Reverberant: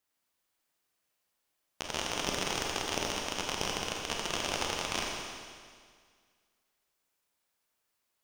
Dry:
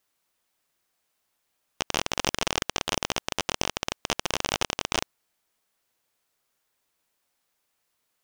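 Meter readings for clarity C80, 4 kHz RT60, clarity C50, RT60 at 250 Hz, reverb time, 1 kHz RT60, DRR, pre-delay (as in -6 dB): 1.0 dB, 1.9 s, 0.0 dB, 1.9 s, 1.9 s, 1.9 s, -1.5 dB, 26 ms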